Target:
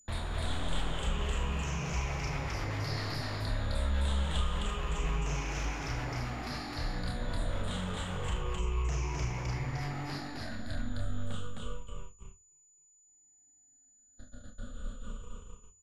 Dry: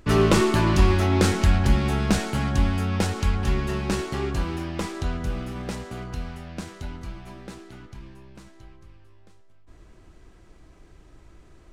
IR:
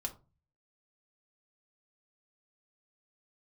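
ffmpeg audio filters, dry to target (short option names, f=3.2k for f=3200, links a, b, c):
-filter_complex "[0:a]afftfilt=real='re*pow(10,23/40*sin(2*PI*(0.74*log(max(b,1)*sr/1024/100)/log(2)-(-0.38)*(pts-256)/sr)))':imag='im*pow(10,23/40*sin(2*PI*(0.74*log(max(b,1)*sr/1024/100)/log(2)-(-0.38)*(pts-256)/sr)))':win_size=1024:overlap=0.75,agate=range=-40dB:threshold=-39dB:ratio=16:detection=peak,bandreject=f=60:t=h:w=6,bandreject=f=120:t=h:w=6,bandreject=f=180:t=h:w=6,adynamicequalizer=threshold=0.00562:dfrequency=2100:dqfactor=5.1:tfrequency=2100:tqfactor=5.1:attack=5:release=100:ratio=0.375:range=2.5:mode=cutabove:tftype=bell,acrossover=split=280|7000[a][b][c];[a]acompressor=threshold=-22dB:ratio=4[d];[b]acompressor=threshold=-26dB:ratio=4[e];[c]acompressor=threshold=-42dB:ratio=4[f];[d][e][f]amix=inputs=3:normalize=0,asplit=2[g][h];[h]alimiter=limit=-20.5dB:level=0:latency=1:release=27,volume=1dB[i];[g][i]amix=inputs=2:normalize=0,acompressor=threshold=-32dB:ratio=2.5,flanger=delay=19.5:depth=6.9:speed=0.39,acrossover=split=160|2900[j][k][l];[k]aeval=exprs='0.0126*(abs(mod(val(0)/0.0126+3,4)-2)-1)':c=same[m];[j][m][l]amix=inputs=3:normalize=0,aeval=exprs='val(0)+0.00112*sin(2*PI*9400*n/s)':c=same,aecho=1:1:32.07|192.4:0.355|0.794,asetrate=32667,aresample=44100"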